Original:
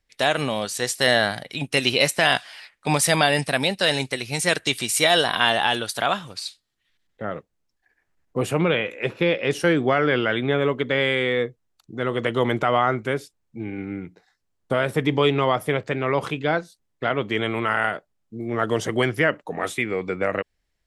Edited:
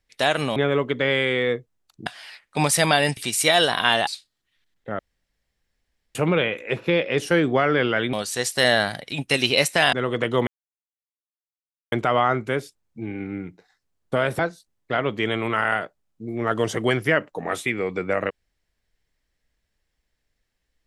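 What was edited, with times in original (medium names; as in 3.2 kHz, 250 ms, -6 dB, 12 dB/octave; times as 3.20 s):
0.56–2.36 s: swap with 10.46–11.96 s
3.47–4.73 s: delete
5.63–6.40 s: delete
7.32–8.48 s: room tone
12.50 s: insert silence 1.45 s
14.97–16.51 s: delete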